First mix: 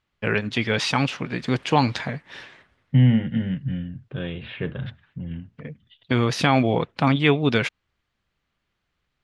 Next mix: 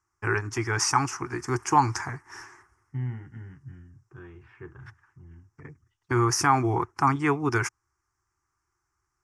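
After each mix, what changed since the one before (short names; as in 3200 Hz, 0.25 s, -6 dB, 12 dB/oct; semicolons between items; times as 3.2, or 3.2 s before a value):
second voice -10.5 dB; master: add EQ curve 110 Hz 0 dB, 210 Hz -19 dB, 360 Hz +4 dB, 550 Hz -23 dB, 830 Hz +2 dB, 1200 Hz +5 dB, 2100 Hz -7 dB, 3800 Hz -27 dB, 5500 Hz +9 dB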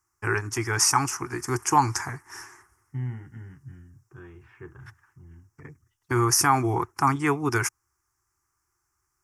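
first voice: remove air absorption 77 m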